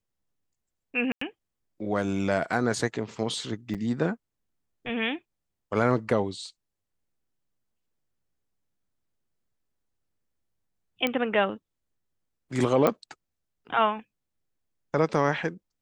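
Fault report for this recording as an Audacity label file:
1.120000	1.210000	gap 94 ms
3.740000	3.750000	gap 7.1 ms
11.070000	11.070000	pop -13 dBFS
12.870000	12.870000	pop -10 dBFS

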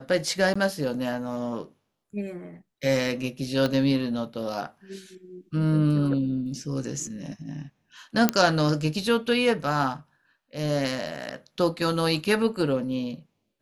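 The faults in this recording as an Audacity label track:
0.540000	0.560000	gap 15 ms
3.660000	3.660000	pop -13 dBFS
8.290000	8.290000	pop -4 dBFS

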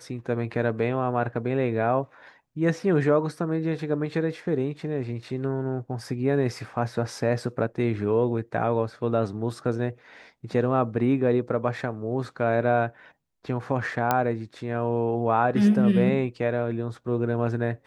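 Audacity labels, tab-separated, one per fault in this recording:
14.110000	14.110000	pop -8 dBFS

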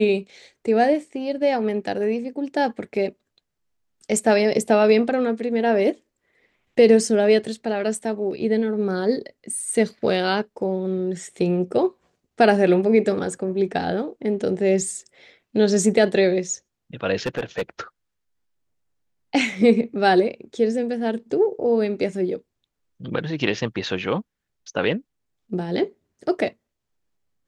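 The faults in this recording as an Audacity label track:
17.160000	17.620000	clipped -19.5 dBFS

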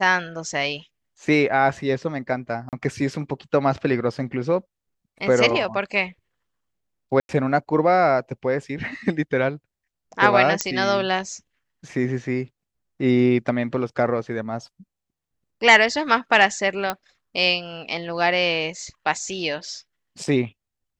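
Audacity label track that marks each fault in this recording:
2.690000	2.730000	gap 38 ms
7.200000	7.290000	gap 91 ms
10.610000	10.610000	pop -3 dBFS
16.900000	16.900000	pop -8 dBFS

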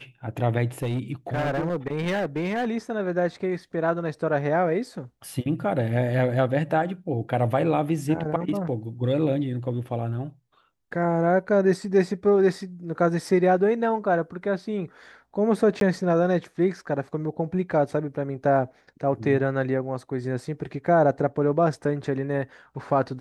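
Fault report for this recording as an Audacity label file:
0.820000	2.680000	clipped -22 dBFS
15.800000	15.810000	gap 12 ms

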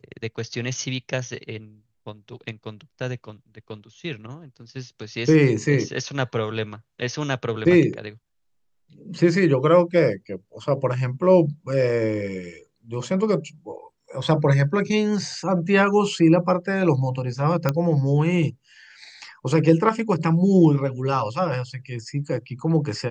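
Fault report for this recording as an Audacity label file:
17.690000	17.690000	pop -8 dBFS

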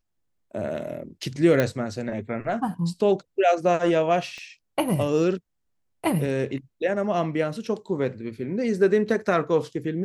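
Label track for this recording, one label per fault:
1.600000	1.600000	pop -9 dBFS
4.380000	4.380000	pop -28 dBFS

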